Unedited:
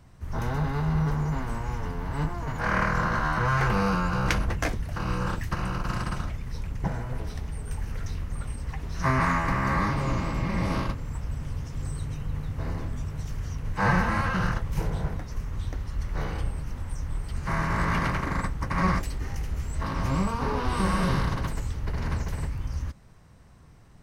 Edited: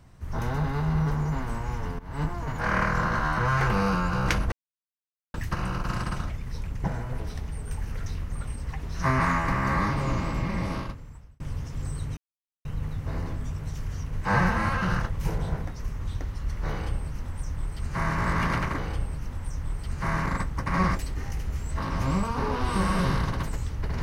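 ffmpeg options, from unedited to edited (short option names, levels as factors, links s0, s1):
-filter_complex "[0:a]asplit=8[s0][s1][s2][s3][s4][s5][s6][s7];[s0]atrim=end=1.99,asetpts=PTS-STARTPTS,afade=t=out:st=1.986:d=0.004:c=hsin:silence=0.112202[s8];[s1]atrim=start=1.99:end=4.52,asetpts=PTS-STARTPTS,afade=t=in:d=0.25:silence=0.112202,afade=t=out:st=2.526:d=0.004:c=hsin[s9];[s2]atrim=start=4.52:end=5.34,asetpts=PTS-STARTPTS,volume=0[s10];[s3]atrim=start=5.34:end=11.4,asetpts=PTS-STARTPTS,afade=t=in:d=0.004:c=hsin,afade=t=out:st=5.05:d=1.01[s11];[s4]atrim=start=11.4:end=12.17,asetpts=PTS-STARTPTS,afade=t=in:d=0.004:c=hsin,afade=t=out:st=0.766:d=0.004:c=hsin,apad=pad_dur=0.48[s12];[s5]atrim=start=12.17:end=18.302,asetpts=PTS-STARTPTS,afade=t=in:d=0.004:c=hsin[s13];[s6]atrim=start=16.228:end=17.712[s14];[s7]atrim=start=18.298[s15];[s8][s9][s10][s11][s12][s13]concat=n=6:v=0:a=1[s16];[s16][s14]acrossfade=d=0.004:c1=hsin:c2=hsin[s17];[s17][s15]acrossfade=d=0.004:c1=hsin:c2=hsin"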